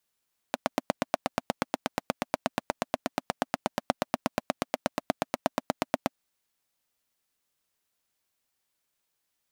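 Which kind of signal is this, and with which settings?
pulse-train model of a single-cylinder engine, steady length 5.58 s, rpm 1,000, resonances 260/620 Hz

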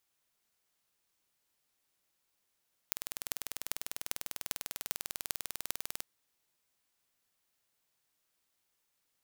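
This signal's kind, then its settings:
impulse train 20.1 per second, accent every 8, −4 dBFS 3.12 s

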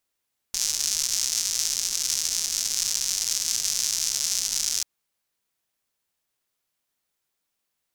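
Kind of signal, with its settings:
rain-like ticks over hiss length 4.29 s, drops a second 210, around 5,900 Hz, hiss −23.5 dB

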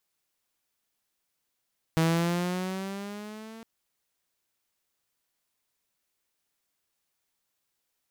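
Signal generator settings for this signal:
pitch glide with a swell saw, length 1.66 s, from 161 Hz, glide +6 semitones, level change −22.5 dB, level −18 dB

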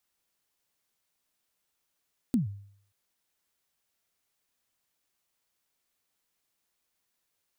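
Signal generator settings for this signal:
synth kick length 0.58 s, from 270 Hz, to 100 Hz, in 132 ms, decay 0.61 s, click on, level −19 dB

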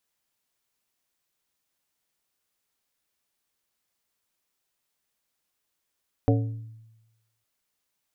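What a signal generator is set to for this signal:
struck glass plate, length 1.16 s, lowest mode 112 Hz, modes 5, decay 1.06 s, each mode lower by 2.5 dB, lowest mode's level −17.5 dB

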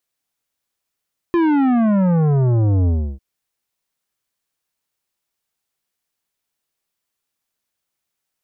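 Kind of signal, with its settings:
bass drop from 350 Hz, over 1.85 s, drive 12 dB, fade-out 0.32 s, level −14 dB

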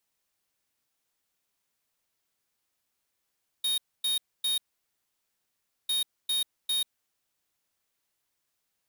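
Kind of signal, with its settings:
beeps in groups square 3,730 Hz, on 0.14 s, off 0.26 s, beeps 3, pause 1.31 s, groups 2, −27.5 dBFS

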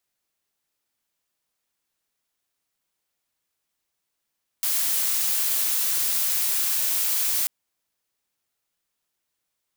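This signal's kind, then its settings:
noise blue, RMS −23.5 dBFS 2.84 s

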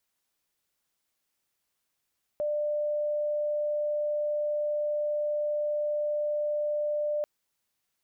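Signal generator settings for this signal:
tone sine 595 Hz −26 dBFS 4.84 s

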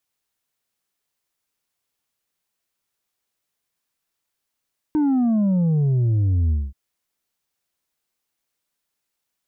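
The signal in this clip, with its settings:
bass drop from 310 Hz, over 1.78 s, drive 4 dB, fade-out 0.22 s, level −16.5 dB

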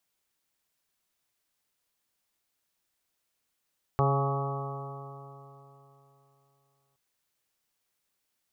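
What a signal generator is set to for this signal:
stiff-string partials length 2.97 s, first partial 137 Hz, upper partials −14.5/−5.5/−9/−8.5/−6/−17.5/−5/−13.5 dB, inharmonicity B 0.00082, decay 3.27 s, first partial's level −23.5 dB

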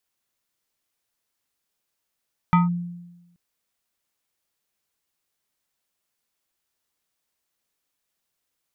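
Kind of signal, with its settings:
two-operator FM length 0.83 s, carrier 174 Hz, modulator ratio 6.23, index 1, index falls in 0.16 s linear, decay 1.06 s, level −11.5 dB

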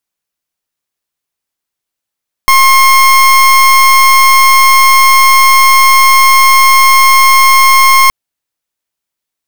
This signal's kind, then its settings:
pulse wave 1,070 Hz, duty 29% −5 dBFS 5.62 s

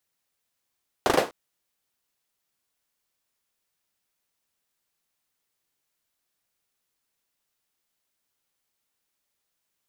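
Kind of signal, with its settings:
synth clap length 0.25 s, bursts 4, apart 38 ms, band 500 Hz, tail 0.26 s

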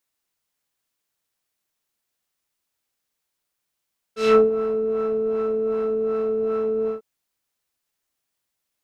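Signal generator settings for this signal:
subtractive patch with filter wobble A4, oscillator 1 triangle, interval +19 semitones, oscillator 2 level −8 dB, sub −15 dB, noise −8.5 dB, filter lowpass, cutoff 570 Hz, Q 1.1, filter envelope 3 octaves, filter decay 0.28 s, filter sustain 10%, attack 195 ms, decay 0.15 s, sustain −11 dB, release 0.13 s, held 2.72 s, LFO 2.6 Hz, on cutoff 0.6 octaves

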